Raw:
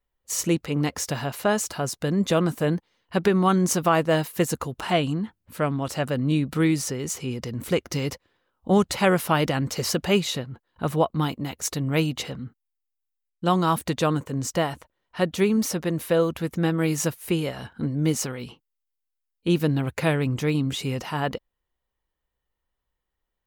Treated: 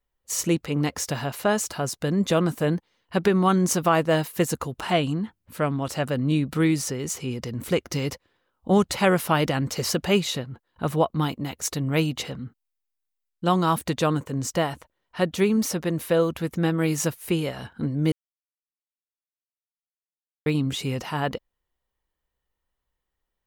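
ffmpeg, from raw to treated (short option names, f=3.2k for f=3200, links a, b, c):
-filter_complex "[0:a]asplit=3[a][b][c];[a]atrim=end=18.12,asetpts=PTS-STARTPTS,afade=t=out:st=18.116:d=0.004:c=hsin[d];[b]atrim=start=18.12:end=20.46,asetpts=PTS-STARTPTS,volume=0[e];[c]atrim=start=20.46,asetpts=PTS-STARTPTS,afade=t=in:d=0.004:c=hsin[f];[d][e][f]concat=n=3:v=0:a=1"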